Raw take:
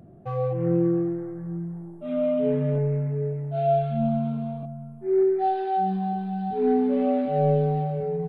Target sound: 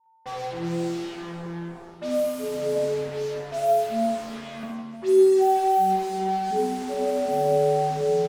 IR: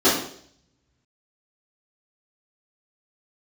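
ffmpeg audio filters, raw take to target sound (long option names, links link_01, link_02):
-filter_complex "[0:a]highpass=frequency=200:width=0.5412,highpass=frequency=200:width=1.3066,aecho=1:1:4.9:0.57,alimiter=limit=-16.5dB:level=0:latency=1:release=225,acrusher=bits=5:mix=0:aa=0.5,aeval=exprs='val(0)+0.000794*sin(2*PI*900*n/s)':channel_layout=same,aecho=1:1:60|156|309.6|555.4|948.6:0.631|0.398|0.251|0.158|0.1,asplit=2[link_01][link_02];[1:a]atrim=start_sample=2205,adelay=40[link_03];[link_02][link_03]afir=irnorm=-1:irlink=0,volume=-32dB[link_04];[link_01][link_04]amix=inputs=2:normalize=0,adynamicequalizer=threshold=0.0112:dfrequency=2000:dqfactor=0.7:tfrequency=2000:tqfactor=0.7:attack=5:release=100:ratio=0.375:range=1.5:mode=cutabove:tftype=highshelf"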